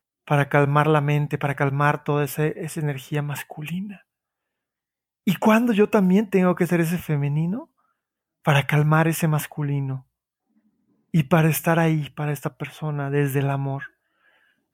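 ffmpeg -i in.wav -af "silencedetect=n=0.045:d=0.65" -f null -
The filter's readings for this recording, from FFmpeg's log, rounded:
silence_start: 3.84
silence_end: 5.27 | silence_duration: 1.44
silence_start: 7.59
silence_end: 8.47 | silence_duration: 0.88
silence_start: 9.97
silence_end: 11.14 | silence_duration: 1.17
silence_start: 13.83
silence_end: 14.74 | silence_duration: 0.90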